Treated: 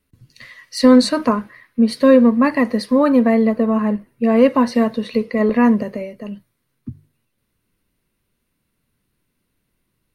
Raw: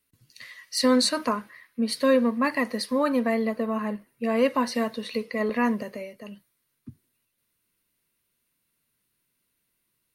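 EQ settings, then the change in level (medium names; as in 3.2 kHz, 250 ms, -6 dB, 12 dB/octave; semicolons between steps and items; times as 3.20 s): tilt EQ -2.5 dB/octave; hum notches 50/100/150 Hz; +6.5 dB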